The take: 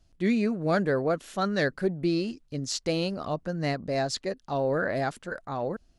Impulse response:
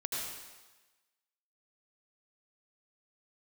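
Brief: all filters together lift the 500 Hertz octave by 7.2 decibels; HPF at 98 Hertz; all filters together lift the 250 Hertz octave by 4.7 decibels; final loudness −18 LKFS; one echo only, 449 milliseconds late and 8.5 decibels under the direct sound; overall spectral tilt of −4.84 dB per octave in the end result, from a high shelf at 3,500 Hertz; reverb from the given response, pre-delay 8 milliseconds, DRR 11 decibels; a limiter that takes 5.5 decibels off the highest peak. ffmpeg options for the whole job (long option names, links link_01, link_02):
-filter_complex "[0:a]highpass=98,equalizer=frequency=250:width_type=o:gain=4,equalizer=frequency=500:width_type=o:gain=8,highshelf=frequency=3500:gain=-7,alimiter=limit=-14.5dB:level=0:latency=1,aecho=1:1:449:0.376,asplit=2[link_01][link_02];[1:a]atrim=start_sample=2205,adelay=8[link_03];[link_02][link_03]afir=irnorm=-1:irlink=0,volume=-14.5dB[link_04];[link_01][link_04]amix=inputs=2:normalize=0,volume=6dB"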